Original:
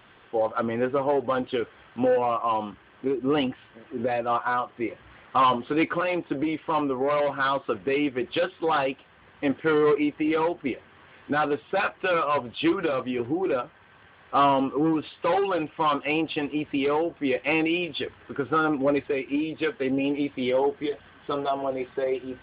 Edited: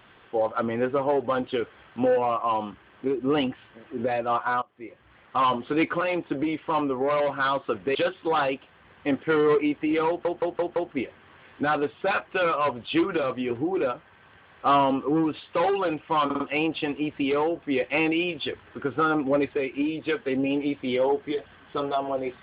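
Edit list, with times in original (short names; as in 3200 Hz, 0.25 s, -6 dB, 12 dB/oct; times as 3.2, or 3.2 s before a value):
4.62–5.71 fade in linear, from -21 dB
7.95–8.32 cut
10.45 stutter 0.17 s, 5 plays
15.94 stutter 0.05 s, 4 plays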